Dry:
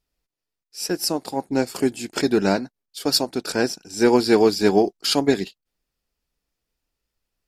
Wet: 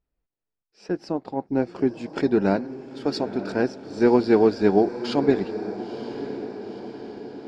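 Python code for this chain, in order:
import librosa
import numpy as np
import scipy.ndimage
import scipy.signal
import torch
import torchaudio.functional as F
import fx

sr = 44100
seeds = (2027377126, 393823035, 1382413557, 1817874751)

y = fx.spacing_loss(x, sr, db_at_10k=fx.steps((0.0, 42.0), (1.97, 30.0)))
y = fx.echo_diffused(y, sr, ms=955, feedback_pct=58, wet_db=-12)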